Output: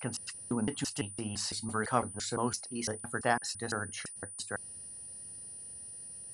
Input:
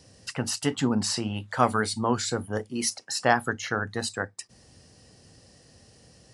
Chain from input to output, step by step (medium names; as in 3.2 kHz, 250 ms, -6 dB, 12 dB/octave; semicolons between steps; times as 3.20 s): slices played last to first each 169 ms, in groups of 3; whistle 9.4 kHz -36 dBFS; trim -7.5 dB